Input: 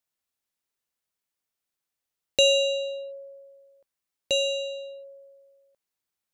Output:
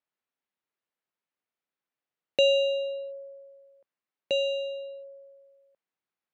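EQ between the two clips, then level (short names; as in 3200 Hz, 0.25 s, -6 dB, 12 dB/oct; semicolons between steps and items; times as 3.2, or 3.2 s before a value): BPF 150–2600 Hz; 0.0 dB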